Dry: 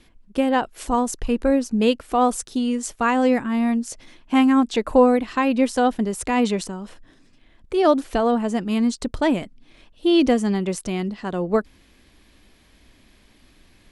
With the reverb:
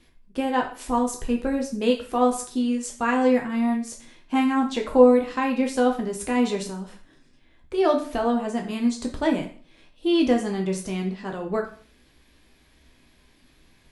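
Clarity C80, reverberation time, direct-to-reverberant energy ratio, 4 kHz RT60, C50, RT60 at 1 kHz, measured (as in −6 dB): 14.0 dB, 0.45 s, 1.0 dB, 0.40 s, 9.0 dB, 0.45 s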